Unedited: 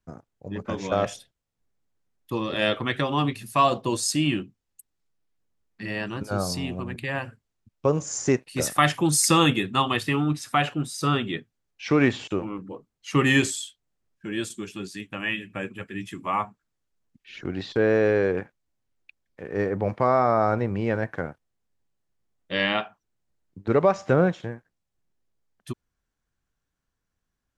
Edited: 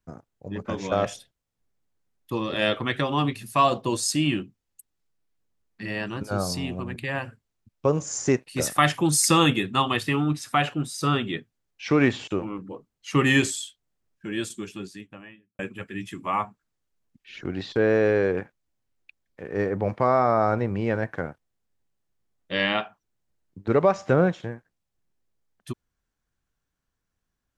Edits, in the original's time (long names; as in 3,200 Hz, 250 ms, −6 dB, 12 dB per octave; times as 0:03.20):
0:14.58–0:15.59: fade out and dull